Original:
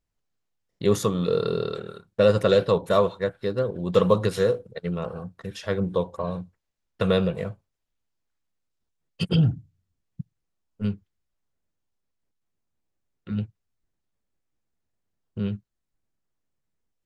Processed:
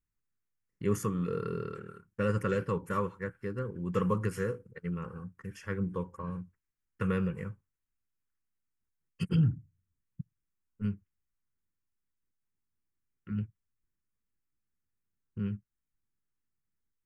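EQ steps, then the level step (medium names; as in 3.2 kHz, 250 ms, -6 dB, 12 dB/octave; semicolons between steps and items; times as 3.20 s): static phaser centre 1.6 kHz, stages 4; -5.0 dB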